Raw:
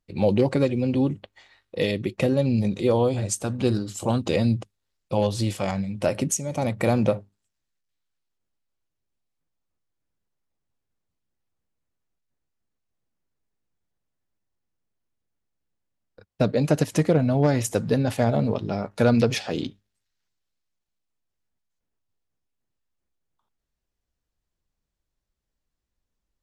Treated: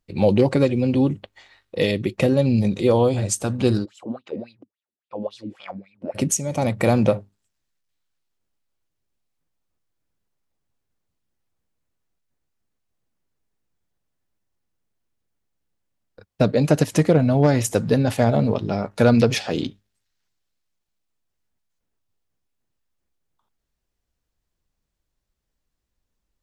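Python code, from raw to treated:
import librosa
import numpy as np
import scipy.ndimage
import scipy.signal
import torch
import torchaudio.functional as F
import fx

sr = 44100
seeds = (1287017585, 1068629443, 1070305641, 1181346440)

y = fx.wah_lfo(x, sr, hz=3.6, low_hz=230.0, high_hz=3500.0, q=5.7, at=(3.84, 6.14), fade=0.02)
y = y * librosa.db_to_amplitude(3.5)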